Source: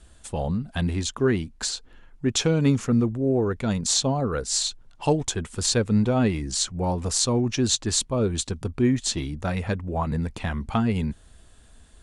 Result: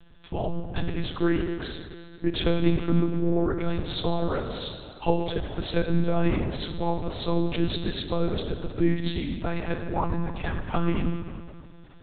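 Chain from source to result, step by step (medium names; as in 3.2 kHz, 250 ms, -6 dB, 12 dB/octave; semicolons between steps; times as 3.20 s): on a send at -5 dB: reverberation RT60 2.2 s, pre-delay 24 ms; on the sum: monotone LPC vocoder at 8 kHz 170 Hz; trim -1.5 dB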